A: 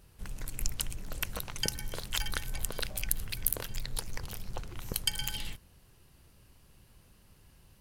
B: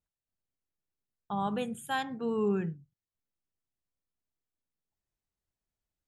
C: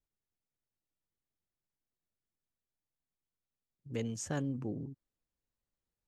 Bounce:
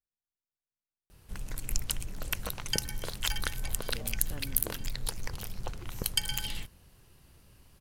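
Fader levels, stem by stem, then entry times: +1.5 dB, mute, -10.0 dB; 1.10 s, mute, 0.00 s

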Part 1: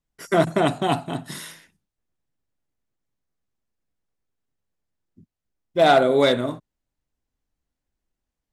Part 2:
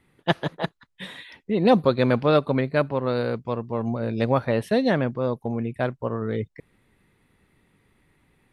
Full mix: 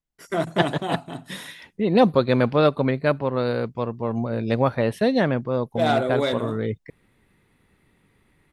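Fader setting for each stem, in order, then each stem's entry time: -6.0 dB, +1.0 dB; 0.00 s, 0.30 s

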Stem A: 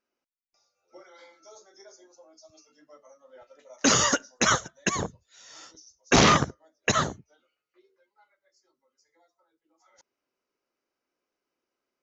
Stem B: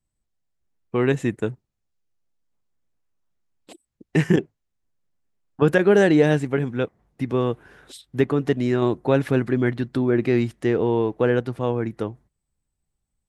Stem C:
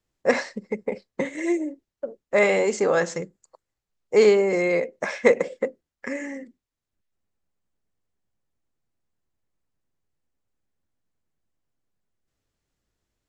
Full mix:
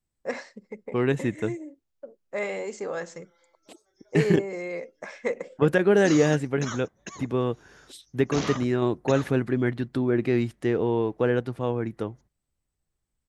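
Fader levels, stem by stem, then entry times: -14.0 dB, -3.5 dB, -11.0 dB; 2.20 s, 0.00 s, 0.00 s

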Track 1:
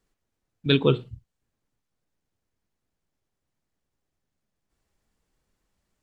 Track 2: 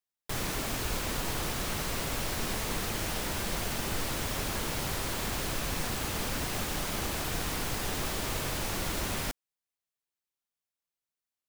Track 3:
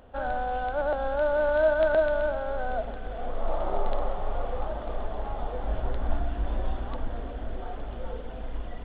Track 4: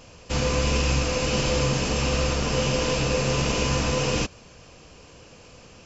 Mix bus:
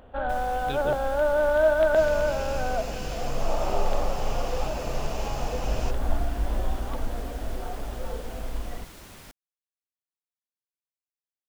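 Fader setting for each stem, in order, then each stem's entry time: -15.5 dB, -13.5 dB, +2.0 dB, -14.0 dB; 0.00 s, 0.00 s, 0.00 s, 1.65 s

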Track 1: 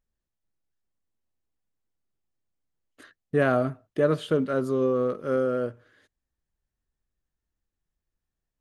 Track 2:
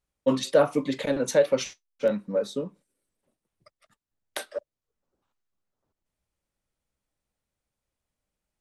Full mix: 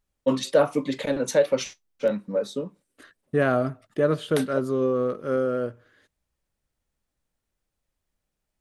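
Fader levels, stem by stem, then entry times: +0.5 dB, +0.5 dB; 0.00 s, 0.00 s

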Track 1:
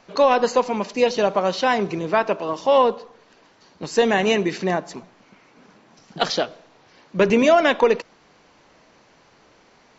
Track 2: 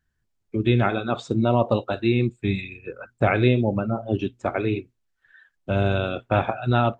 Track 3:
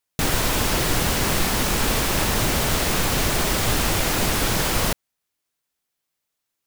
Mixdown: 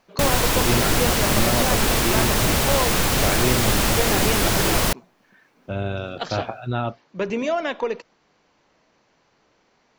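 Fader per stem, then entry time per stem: -8.5 dB, -5.0 dB, +1.5 dB; 0.00 s, 0.00 s, 0.00 s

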